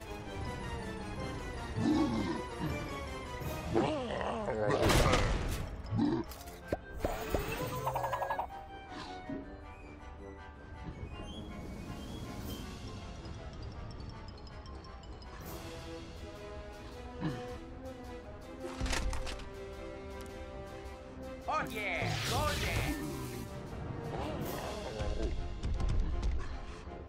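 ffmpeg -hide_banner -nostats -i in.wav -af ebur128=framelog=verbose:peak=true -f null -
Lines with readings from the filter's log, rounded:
Integrated loudness:
  I:         -37.8 LUFS
  Threshold: -48.2 LUFS
Loudness range:
  LRA:        12.9 LU
  Threshold: -58.1 LUFS
  LRA low:   -46.2 LUFS
  LRA high:  -33.3 LUFS
True peak:
  Peak:      -14.6 dBFS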